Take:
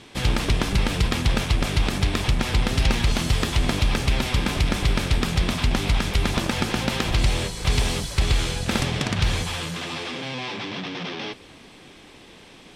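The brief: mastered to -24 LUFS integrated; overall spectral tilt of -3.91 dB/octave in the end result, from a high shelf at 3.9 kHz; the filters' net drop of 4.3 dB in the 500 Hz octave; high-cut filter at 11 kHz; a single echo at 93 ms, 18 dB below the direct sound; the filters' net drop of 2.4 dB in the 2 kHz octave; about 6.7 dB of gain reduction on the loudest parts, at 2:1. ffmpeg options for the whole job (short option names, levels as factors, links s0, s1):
-af "lowpass=11000,equalizer=f=500:t=o:g=-5.5,equalizer=f=2000:t=o:g=-4,highshelf=f=3900:g=4,acompressor=threshold=0.0398:ratio=2,aecho=1:1:93:0.126,volume=1.88"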